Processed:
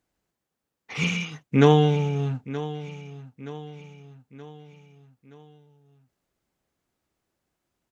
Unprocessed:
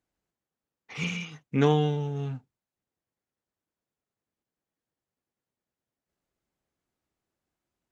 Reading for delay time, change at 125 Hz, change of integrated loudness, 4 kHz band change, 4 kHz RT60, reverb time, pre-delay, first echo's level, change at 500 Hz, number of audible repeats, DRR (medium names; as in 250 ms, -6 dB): 924 ms, +6.0 dB, +5.0 dB, +6.0 dB, no reverb, no reverb, no reverb, -15.0 dB, +6.0 dB, 4, no reverb